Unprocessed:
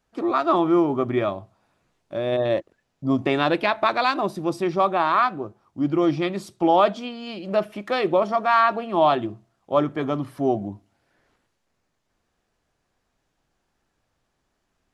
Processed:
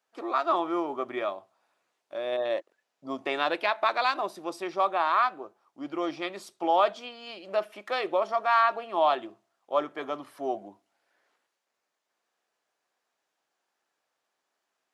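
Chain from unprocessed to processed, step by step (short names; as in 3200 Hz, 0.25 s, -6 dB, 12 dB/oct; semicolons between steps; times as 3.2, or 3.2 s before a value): HPF 520 Hz 12 dB/oct; gain -4 dB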